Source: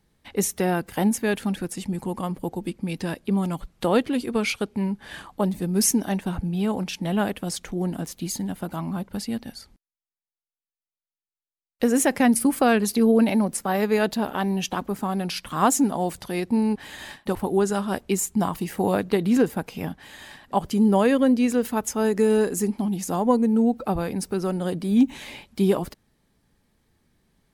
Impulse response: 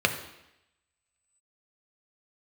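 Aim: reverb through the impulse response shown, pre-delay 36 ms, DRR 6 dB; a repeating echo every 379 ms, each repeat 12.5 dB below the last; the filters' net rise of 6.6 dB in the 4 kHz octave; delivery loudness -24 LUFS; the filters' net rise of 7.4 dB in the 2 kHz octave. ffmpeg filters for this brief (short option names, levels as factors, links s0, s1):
-filter_complex "[0:a]equalizer=f=2000:t=o:g=8,equalizer=f=4000:t=o:g=6,aecho=1:1:379|758|1137:0.237|0.0569|0.0137,asplit=2[s0][s1];[1:a]atrim=start_sample=2205,adelay=36[s2];[s1][s2]afir=irnorm=-1:irlink=0,volume=0.1[s3];[s0][s3]amix=inputs=2:normalize=0,volume=0.794"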